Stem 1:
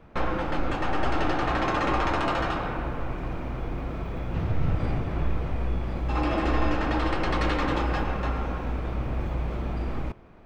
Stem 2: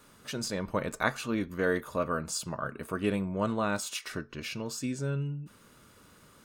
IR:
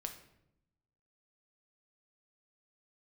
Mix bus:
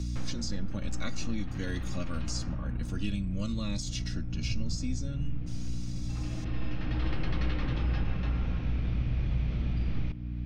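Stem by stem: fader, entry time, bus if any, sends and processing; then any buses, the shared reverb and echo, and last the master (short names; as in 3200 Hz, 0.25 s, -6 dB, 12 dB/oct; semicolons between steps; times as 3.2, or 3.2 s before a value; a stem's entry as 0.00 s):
-1.0 dB, 0.00 s, send -11.5 dB, LPF 2100 Hz 12 dB/oct; auto duck -18 dB, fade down 0.25 s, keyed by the second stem
+2.0 dB, 0.00 s, no send, comb 3.6 ms, depth 72%; cascading phaser falling 0.85 Hz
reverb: on, RT60 0.80 s, pre-delay 6 ms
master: EQ curve 150 Hz 0 dB, 340 Hz -12 dB, 1000 Hz -18 dB, 5900 Hz +3 dB, 11000 Hz -22 dB; hum 60 Hz, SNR 10 dB; three-band squash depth 70%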